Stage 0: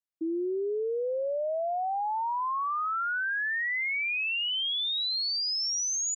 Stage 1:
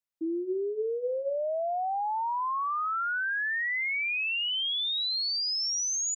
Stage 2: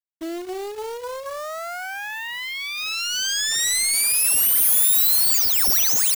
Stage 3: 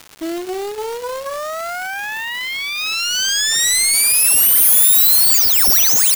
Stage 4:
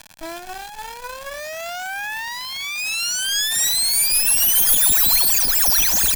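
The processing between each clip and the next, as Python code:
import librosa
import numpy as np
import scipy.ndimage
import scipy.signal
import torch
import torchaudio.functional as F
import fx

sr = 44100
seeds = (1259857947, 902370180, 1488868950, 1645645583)

y1 = fx.hum_notches(x, sr, base_hz=60, count=9)
y2 = fx.self_delay(y1, sr, depth_ms=0.36)
y2 = fx.bass_treble(y2, sr, bass_db=4, treble_db=13)
y2 = fx.quant_companded(y2, sr, bits=4)
y3 = fx.dmg_crackle(y2, sr, seeds[0], per_s=250.0, level_db=-29.0)
y3 = y3 * librosa.db_to_amplitude(6.0)
y4 = fx.lower_of_two(y3, sr, delay_ms=1.2)
y4 = y4 * librosa.db_to_amplitude(-2.5)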